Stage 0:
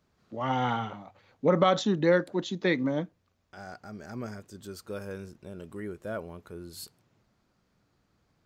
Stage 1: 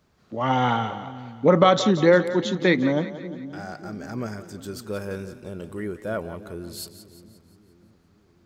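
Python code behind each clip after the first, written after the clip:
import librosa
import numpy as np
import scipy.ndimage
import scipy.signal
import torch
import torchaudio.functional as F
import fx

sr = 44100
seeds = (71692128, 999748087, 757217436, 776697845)

y = fx.echo_split(x, sr, split_hz=330.0, low_ms=588, high_ms=176, feedback_pct=52, wet_db=-13.0)
y = F.gain(torch.from_numpy(y), 6.5).numpy()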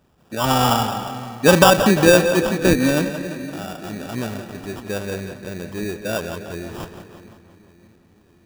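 y = fx.sample_hold(x, sr, seeds[0], rate_hz=2100.0, jitter_pct=0)
y = fx.echo_tape(y, sr, ms=173, feedback_pct=62, wet_db=-10.0, lp_hz=4200.0, drive_db=6.0, wow_cents=29)
y = F.gain(torch.from_numpy(y), 4.0).numpy()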